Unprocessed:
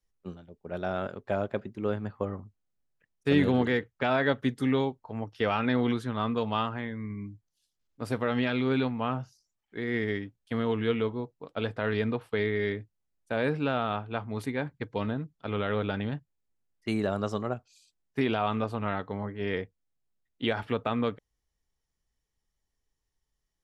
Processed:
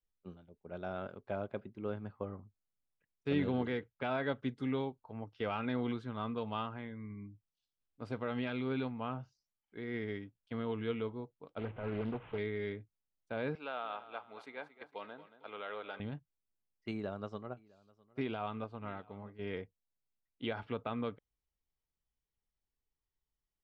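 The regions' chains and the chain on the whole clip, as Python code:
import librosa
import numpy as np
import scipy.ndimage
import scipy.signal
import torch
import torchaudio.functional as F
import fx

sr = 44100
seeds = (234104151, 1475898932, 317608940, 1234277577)

y = fx.chain(x, sr, fx.delta_mod(bps=16000, step_db=-39.0),
    fx.low_shelf(hz=160.0, db=4.0),
    fx.doppler_dist(depth_ms=0.61), at=(11.58, 12.38))
y = fx.chain(y, sr, fx.highpass(hz=570.0, slope=12),
    fx.echo_feedback(ms=227, feedback_pct=42, wet_db=-14), at=(13.55, 16.0))
y = fx.chain(y, sr, fx.echo_single(ms=657, db=-19.5),
    fx.upward_expand(threshold_db=-39.0, expansion=1.5), at=(16.91, 19.39))
y = scipy.signal.sosfilt(scipy.signal.butter(2, 4000.0, 'lowpass', fs=sr, output='sos'), y)
y = fx.notch(y, sr, hz=1800.0, q=10.0)
y = y * 10.0 ** (-9.0 / 20.0)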